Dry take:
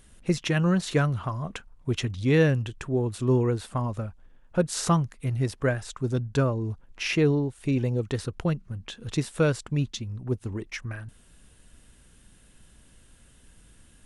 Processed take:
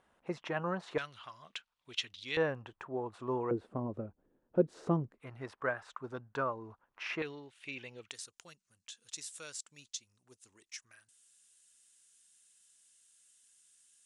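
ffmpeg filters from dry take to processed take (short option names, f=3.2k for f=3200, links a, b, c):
-af "asetnsamples=n=441:p=0,asendcmd='0.98 bandpass f 3500;2.37 bandpass f 930;3.51 bandpass f 360;5.18 bandpass f 1100;7.22 bandpass f 2700;8.11 bandpass f 7200',bandpass=f=870:t=q:w=1.7:csg=0"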